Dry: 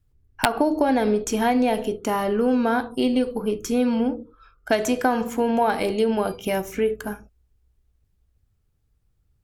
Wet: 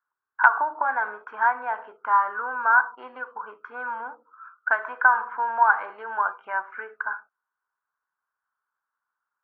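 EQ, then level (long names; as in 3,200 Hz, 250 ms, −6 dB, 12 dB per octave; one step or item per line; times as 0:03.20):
high-pass with resonance 1,000 Hz, resonance Q 6.4
low-pass with resonance 1,500 Hz, resonance Q 9.2
high-frequency loss of the air 300 metres
−9.0 dB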